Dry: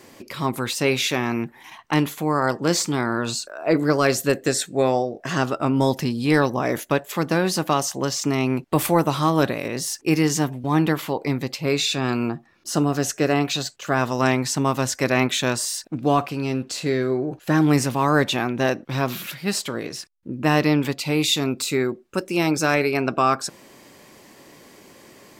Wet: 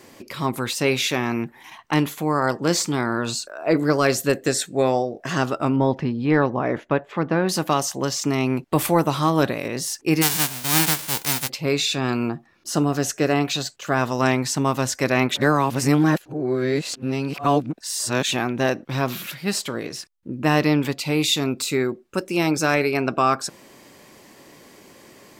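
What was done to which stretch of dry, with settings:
5.76–7.49 LPF 2100 Hz
10.21–11.48 spectral whitening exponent 0.1
15.34–18.31 reverse

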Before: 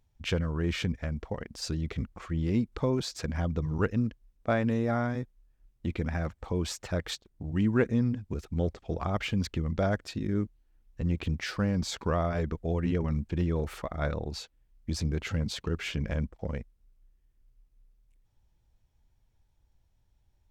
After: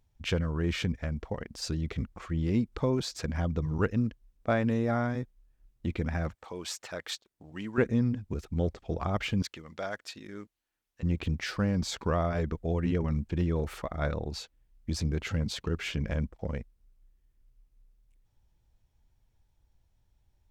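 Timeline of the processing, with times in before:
6.35–7.78 HPF 840 Hz 6 dB/oct
9.42–11.03 HPF 1200 Hz 6 dB/oct

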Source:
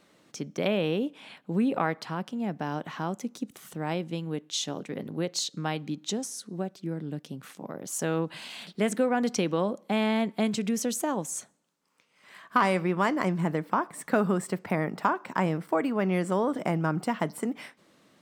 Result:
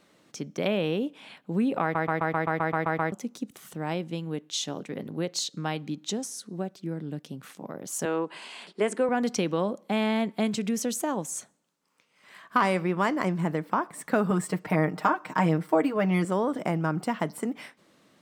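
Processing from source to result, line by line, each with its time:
1.82 stutter in place 0.13 s, 10 plays
8.05–9.09 speaker cabinet 300–9800 Hz, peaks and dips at 390 Hz +7 dB, 1000 Hz +5 dB, 3800 Hz -6 dB, 5900 Hz -5 dB
14.3–16.25 comb 6.5 ms, depth 79%

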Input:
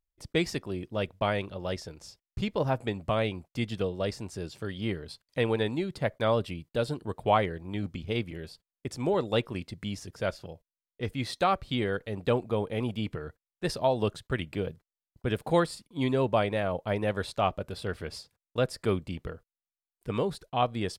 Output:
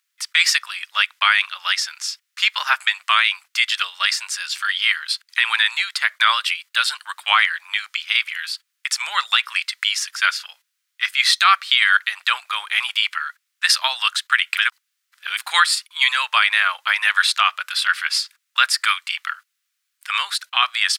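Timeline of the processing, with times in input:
14.57–15.37 reverse
whole clip: steep high-pass 1300 Hz 36 dB/oct; high shelf 8000 Hz -6 dB; maximiser +26 dB; gain -2 dB

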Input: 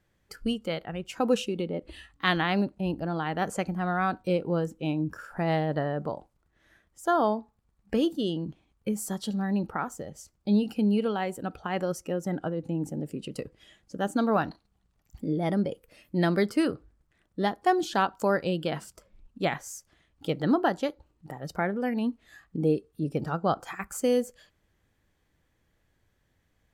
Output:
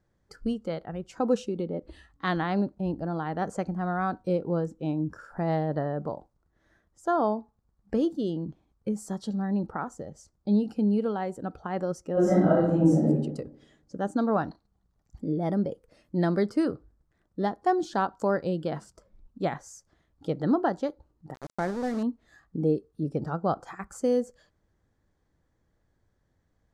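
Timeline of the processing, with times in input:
12.13–13.07 reverb throw, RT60 0.87 s, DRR -11.5 dB
21.34–22.03 sample gate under -31.5 dBFS
whole clip: LPF 6100 Hz 12 dB/oct; bell 2700 Hz -13 dB 1.1 oct

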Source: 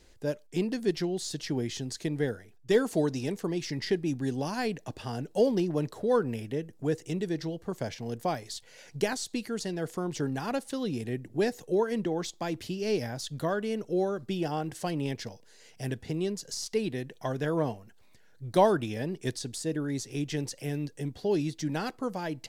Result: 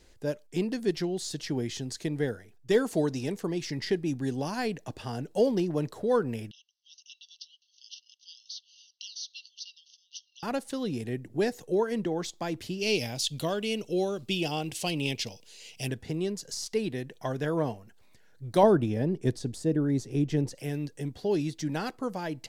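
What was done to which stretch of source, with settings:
6.51–10.43 brick-wall FIR band-pass 2700–6400 Hz
12.81–15.88 resonant high shelf 2100 Hz +7 dB, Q 3
18.63–20.55 tilt shelf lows +6.5 dB

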